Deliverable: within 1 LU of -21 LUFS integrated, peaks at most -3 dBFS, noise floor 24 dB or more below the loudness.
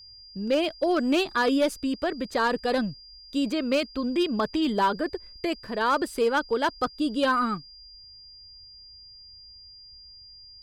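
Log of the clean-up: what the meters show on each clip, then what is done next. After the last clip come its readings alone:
clipped samples 0.6%; clipping level -16.5 dBFS; steady tone 4.8 kHz; tone level -46 dBFS; loudness -26.0 LUFS; peak level -16.5 dBFS; loudness target -21.0 LUFS
-> clip repair -16.5 dBFS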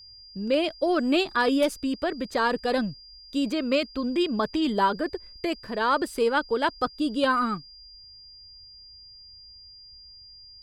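clipped samples 0.0%; steady tone 4.8 kHz; tone level -46 dBFS
-> band-stop 4.8 kHz, Q 30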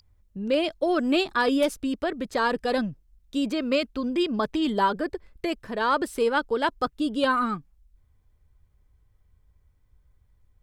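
steady tone not found; loudness -26.0 LUFS; peak level -11.5 dBFS; loudness target -21.0 LUFS
-> trim +5 dB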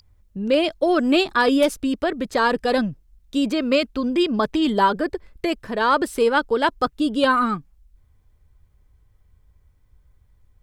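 loudness -21.0 LUFS; peak level -6.5 dBFS; noise floor -59 dBFS

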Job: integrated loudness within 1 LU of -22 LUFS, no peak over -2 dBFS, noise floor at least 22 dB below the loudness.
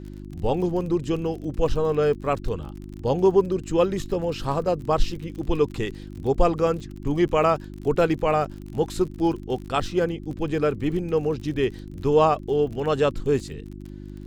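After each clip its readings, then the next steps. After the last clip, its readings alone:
tick rate 39 per s; hum 50 Hz; highest harmonic 350 Hz; hum level -35 dBFS; loudness -24.5 LUFS; peak level -5.0 dBFS; loudness target -22.0 LUFS
-> de-click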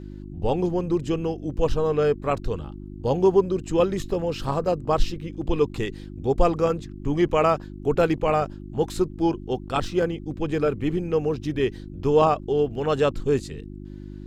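tick rate 1.8 per s; hum 50 Hz; highest harmonic 350 Hz; hum level -35 dBFS
-> de-hum 50 Hz, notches 7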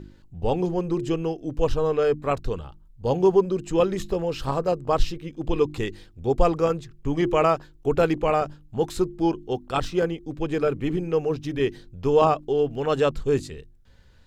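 hum not found; loudness -24.5 LUFS; peak level -5.0 dBFS; loudness target -22.0 LUFS
-> trim +2.5 dB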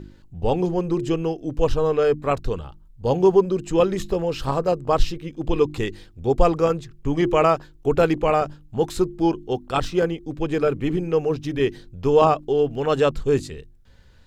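loudness -22.5 LUFS; peak level -2.5 dBFS; noise floor -50 dBFS

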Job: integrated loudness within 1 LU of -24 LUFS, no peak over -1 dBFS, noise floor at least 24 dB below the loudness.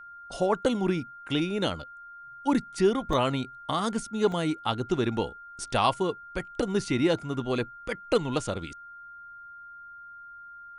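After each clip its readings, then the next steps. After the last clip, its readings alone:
dropouts 2; longest dropout 2.1 ms; steady tone 1.4 kHz; tone level -43 dBFS; loudness -28.5 LUFS; peak level -9.5 dBFS; loudness target -24.0 LUFS
-> interpolate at 3.13/4.32 s, 2.1 ms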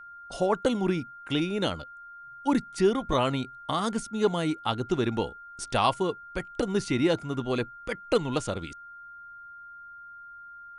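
dropouts 0; steady tone 1.4 kHz; tone level -43 dBFS
-> band-stop 1.4 kHz, Q 30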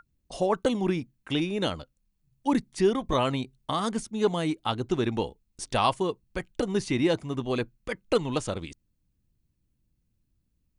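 steady tone not found; loudness -28.5 LUFS; peak level -9.5 dBFS; loudness target -24.0 LUFS
-> trim +4.5 dB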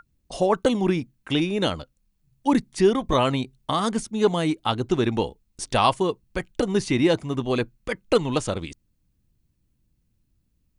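loudness -24.0 LUFS; peak level -5.0 dBFS; noise floor -70 dBFS

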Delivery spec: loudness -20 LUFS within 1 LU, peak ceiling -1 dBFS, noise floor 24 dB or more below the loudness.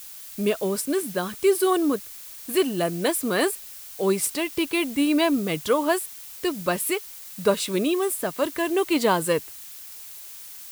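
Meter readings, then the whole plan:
noise floor -41 dBFS; noise floor target -49 dBFS; loudness -24.5 LUFS; peak level -8.0 dBFS; loudness target -20.0 LUFS
-> noise print and reduce 8 dB; trim +4.5 dB

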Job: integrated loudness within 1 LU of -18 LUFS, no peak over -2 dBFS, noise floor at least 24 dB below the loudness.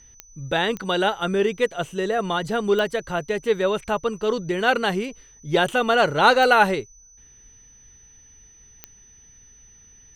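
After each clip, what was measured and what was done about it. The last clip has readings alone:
clicks found 5; steady tone 6 kHz; tone level -49 dBFS; loudness -21.5 LUFS; peak level -4.0 dBFS; loudness target -18.0 LUFS
-> de-click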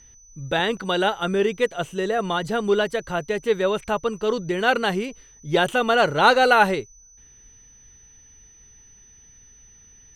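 clicks found 0; steady tone 6 kHz; tone level -49 dBFS
-> band-stop 6 kHz, Q 30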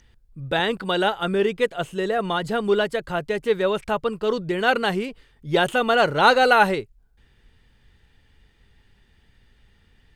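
steady tone not found; loudness -21.5 LUFS; peak level -4.0 dBFS; loudness target -18.0 LUFS
-> trim +3.5 dB; peak limiter -2 dBFS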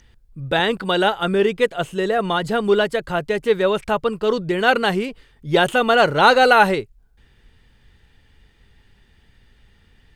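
loudness -18.5 LUFS; peak level -2.0 dBFS; noise floor -56 dBFS

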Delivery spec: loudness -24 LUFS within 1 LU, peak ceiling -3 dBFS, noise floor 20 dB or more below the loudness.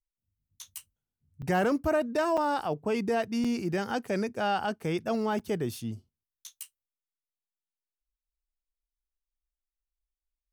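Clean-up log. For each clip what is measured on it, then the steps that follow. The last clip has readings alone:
dropouts 4; longest dropout 5.5 ms; loudness -29.5 LUFS; peak level -17.0 dBFS; loudness target -24.0 LUFS
-> interpolate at 1.42/2.37/3.44/5.39 s, 5.5 ms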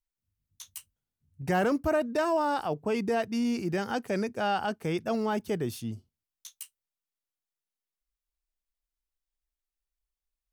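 dropouts 0; loudness -29.5 LUFS; peak level -17.0 dBFS; loudness target -24.0 LUFS
-> trim +5.5 dB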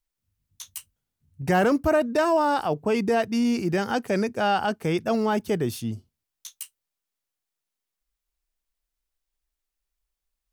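loudness -24.0 LUFS; peak level -11.5 dBFS; noise floor -86 dBFS

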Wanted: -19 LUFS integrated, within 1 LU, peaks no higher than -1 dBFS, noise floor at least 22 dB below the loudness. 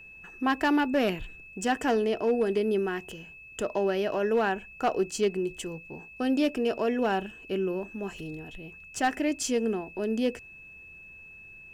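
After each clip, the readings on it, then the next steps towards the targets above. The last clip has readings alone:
clipped samples 0.4%; clipping level -18.0 dBFS; steady tone 2.6 kHz; tone level -46 dBFS; loudness -28.5 LUFS; peak level -18.0 dBFS; loudness target -19.0 LUFS
-> clip repair -18 dBFS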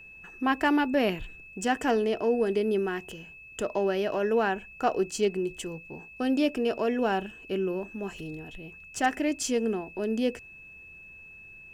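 clipped samples 0.0%; steady tone 2.6 kHz; tone level -46 dBFS
-> band-stop 2.6 kHz, Q 30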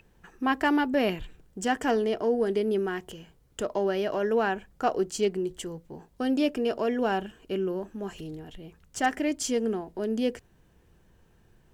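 steady tone not found; loudness -28.5 LUFS; peak level -12.0 dBFS; loudness target -19.0 LUFS
-> trim +9.5 dB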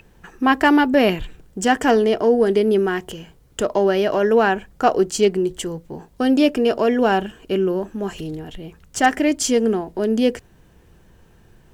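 loudness -19.0 LUFS; peak level -2.5 dBFS; noise floor -52 dBFS

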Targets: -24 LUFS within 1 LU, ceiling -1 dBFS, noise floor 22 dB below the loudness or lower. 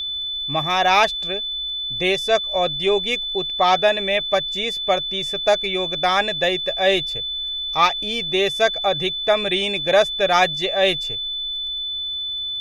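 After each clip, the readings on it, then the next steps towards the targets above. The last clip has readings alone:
tick rate 32 per s; steady tone 3.5 kHz; tone level -24 dBFS; loudness -19.5 LUFS; peak level -2.0 dBFS; loudness target -24.0 LUFS
-> de-click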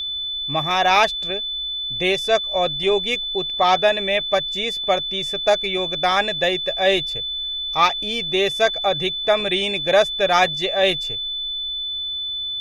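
tick rate 0.48 per s; steady tone 3.5 kHz; tone level -24 dBFS
-> band-stop 3.5 kHz, Q 30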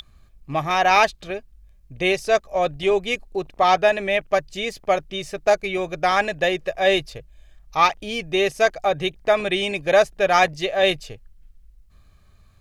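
steady tone not found; loudness -21.0 LUFS; peak level -3.0 dBFS; loudness target -24.0 LUFS
-> trim -3 dB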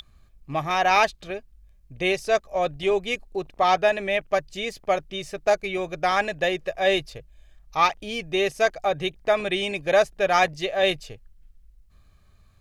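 loudness -24.0 LUFS; peak level -6.0 dBFS; noise floor -57 dBFS

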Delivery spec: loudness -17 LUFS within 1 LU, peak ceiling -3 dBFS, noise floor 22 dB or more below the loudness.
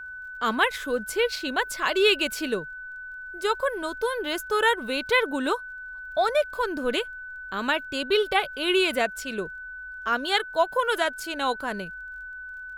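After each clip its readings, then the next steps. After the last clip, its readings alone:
tick rate 17 per s; steady tone 1.5 kHz; tone level -36 dBFS; loudness -25.5 LUFS; peak level -8.0 dBFS; loudness target -17.0 LUFS
-> de-click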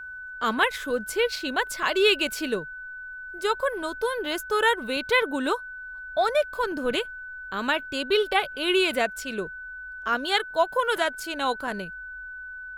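tick rate 1.3 per s; steady tone 1.5 kHz; tone level -36 dBFS
-> band-stop 1.5 kHz, Q 30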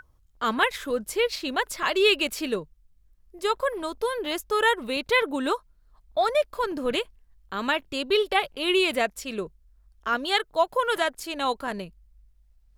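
steady tone not found; loudness -26.0 LUFS; peak level -8.0 dBFS; loudness target -17.0 LUFS
-> trim +9 dB; peak limiter -3 dBFS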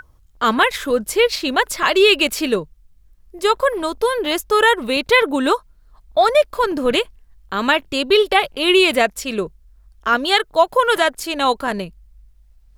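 loudness -17.5 LUFS; peak level -3.0 dBFS; noise floor -52 dBFS

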